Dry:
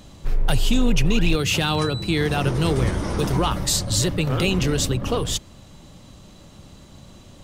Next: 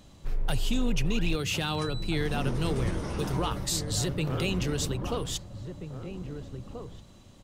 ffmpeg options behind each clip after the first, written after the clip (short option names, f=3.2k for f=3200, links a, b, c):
-filter_complex "[0:a]asplit=2[a][b];[b]adelay=1633,volume=-8dB,highshelf=f=4k:g=-36.7[c];[a][c]amix=inputs=2:normalize=0,volume=-8.5dB"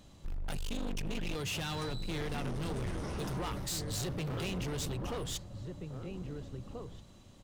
-af "volume=30dB,asoftclip=hard,volume=-30dB,volume=-3.5dB"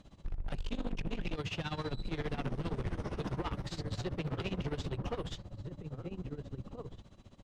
-filter_complex "[0:a]acrossover=split=5900[a][b];[b]acompressor=threshold=-57dB:ratio=4:attack=1:release=60[c];[a][c]amix=inputs=2:normalize=0,tremolo=f=15:d=0.85,aemphasis=mode=reproduction:type=50fm,volume=3dB"